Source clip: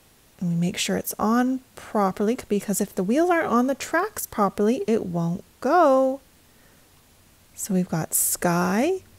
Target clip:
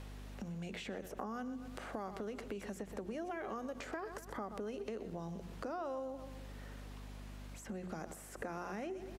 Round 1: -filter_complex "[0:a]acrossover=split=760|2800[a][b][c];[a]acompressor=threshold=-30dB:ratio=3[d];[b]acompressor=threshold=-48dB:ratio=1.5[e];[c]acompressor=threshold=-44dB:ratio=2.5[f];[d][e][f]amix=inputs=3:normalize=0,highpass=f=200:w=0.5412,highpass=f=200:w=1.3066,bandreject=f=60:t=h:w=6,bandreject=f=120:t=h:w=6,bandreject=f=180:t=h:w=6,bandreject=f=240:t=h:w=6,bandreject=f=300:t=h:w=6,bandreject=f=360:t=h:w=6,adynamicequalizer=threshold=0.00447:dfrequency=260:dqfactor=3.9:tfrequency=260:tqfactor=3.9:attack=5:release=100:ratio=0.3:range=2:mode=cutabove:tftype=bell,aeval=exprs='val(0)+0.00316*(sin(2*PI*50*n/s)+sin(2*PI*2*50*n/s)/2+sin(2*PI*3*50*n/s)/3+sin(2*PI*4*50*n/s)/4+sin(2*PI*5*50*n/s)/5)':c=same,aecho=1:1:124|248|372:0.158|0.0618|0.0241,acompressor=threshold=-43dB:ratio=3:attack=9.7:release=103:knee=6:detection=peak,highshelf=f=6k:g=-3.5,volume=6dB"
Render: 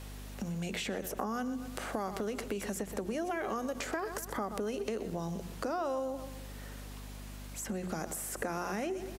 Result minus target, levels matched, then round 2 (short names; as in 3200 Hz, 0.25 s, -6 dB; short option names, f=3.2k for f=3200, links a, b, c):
8000 Hz band +7.0 dB; compressor: peak gain reduction -6.5 dB
-filter_complex "[0:a]acrossover=split=760|2800[a][b][c];[a]acompressor=threshold=-30dB:ratio=3[d];[b]acompressor=threshold=-48dB:ratio=1.5[e];[c]acompressor=threshold=-44dB:ratio=2.5[f];[d][e][f]amix=inputs=3:normalize=0,highpass=f=200:w=0.5412,highpass=f=200:w=1.3066,bandreject=f=60:t=h:w=6,bandreject=f=120:t=h:w=6,bandreject=f=180:t=h:w=6,bandreject=f=240:t=h:w=6,bandreject=f=300:t=h:w=6,bandreject=f=360:t=h:w=6,adynamicequalizer=threshold=0.00447:dfrequency=260:dqfactor=3.9:tfrequency=260:tqfactor=3.9:attack=5:release=100:ratio=0.3:range=2:mode=cutabove:tftype=bell,aeval=exprs='val(0)+0.00316*(sin(2*PI*50*n/s)+sin(2*PI*2*50*n/s)/2+sin(2*PI*3*50*n/s)/3+sin(2*PI*4*50*n/s)/4+sin(2*PI*5*50*n/s)/5)':c=same,aecho=1:1:124|248|372:0.158|0.0618|0.0241,acompressor=threshold=-53dB:ratio=3:attack=9.7:release=103:knee=6:detection=peak,highshelf=f=6k:g=-15.5,volume=6dB"